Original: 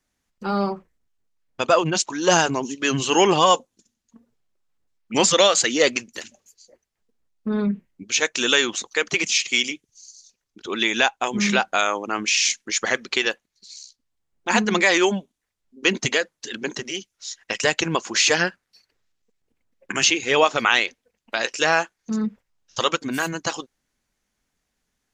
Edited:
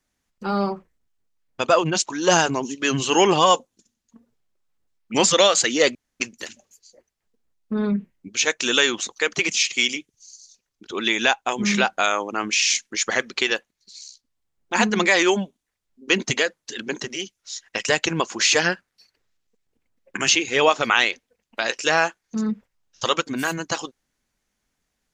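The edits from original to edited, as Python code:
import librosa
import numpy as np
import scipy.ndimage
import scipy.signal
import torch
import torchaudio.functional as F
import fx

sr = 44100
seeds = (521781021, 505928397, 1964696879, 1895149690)

y = fx.edit(x, sr, fx.insert_room_tone(at_s=5.95, length_s=0.25), tone=tone)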